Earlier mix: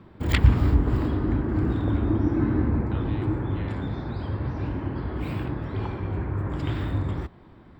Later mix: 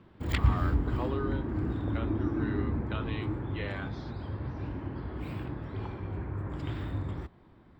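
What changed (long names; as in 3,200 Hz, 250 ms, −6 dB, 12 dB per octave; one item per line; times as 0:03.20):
speech +6.0 dB
background −7.5 dB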